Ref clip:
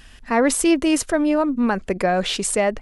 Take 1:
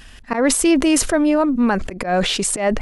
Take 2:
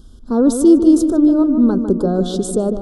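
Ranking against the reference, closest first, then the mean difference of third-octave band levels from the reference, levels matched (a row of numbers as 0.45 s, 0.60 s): 1, 2; 2.5 dB, 9.0 dB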